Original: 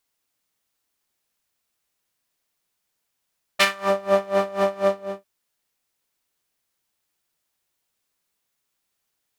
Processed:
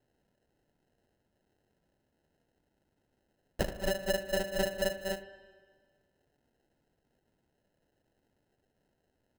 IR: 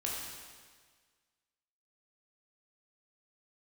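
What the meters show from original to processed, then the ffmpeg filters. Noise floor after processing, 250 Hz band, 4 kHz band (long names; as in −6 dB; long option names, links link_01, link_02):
−79 dBFS, −7.0 dB, −10.0 dB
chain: -filter_complex "[0:a]acompressor=threshold=-28dB:ratio=10,acrusher=samples=38:mix=1:aa=0.000001,asplit=2[link_01][link_02];[1:a]atrim=start_sample=2205,lowpass=2500,adelay=96[link_03];[link_02][link_03]afir=irnorm=-1:irlink=0,volume=-15.5dB[link_04];[link_01][link_04]amix=inputs=2:normalize=0"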